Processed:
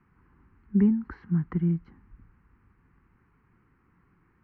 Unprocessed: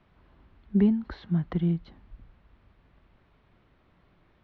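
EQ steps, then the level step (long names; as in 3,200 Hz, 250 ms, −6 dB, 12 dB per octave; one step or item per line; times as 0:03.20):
low-shelf EQ 65 Hz −11 dB
high-shelf EQ 2,700 Hz −10.5 dB
phaser with its sweep stopped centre 1,500 Hz, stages 4
+3.0 dB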